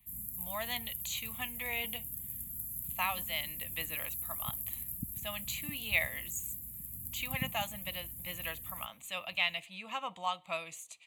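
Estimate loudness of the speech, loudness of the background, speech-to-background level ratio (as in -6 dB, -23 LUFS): -38.0 LUFS, -39.0 LUFS, 1.0 dB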